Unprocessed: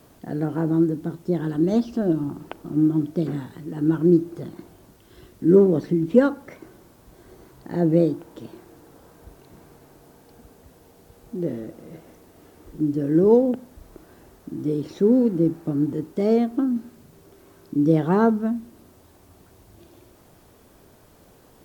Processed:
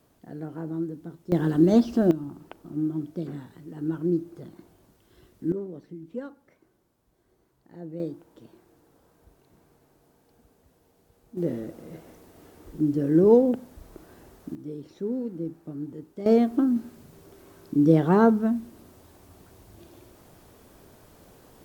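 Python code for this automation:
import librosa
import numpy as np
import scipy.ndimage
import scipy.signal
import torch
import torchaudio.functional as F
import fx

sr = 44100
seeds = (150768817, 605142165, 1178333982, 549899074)

y = fx.gain(x, sr, db=fx.steps((0.0, -11.0), (1.32, 2.0), (2.11, -8.5), (5.52, -19.5), (8.0, -11.5), (11.37, -1.0), (14.55, -12.5), (16.26, 0.0)))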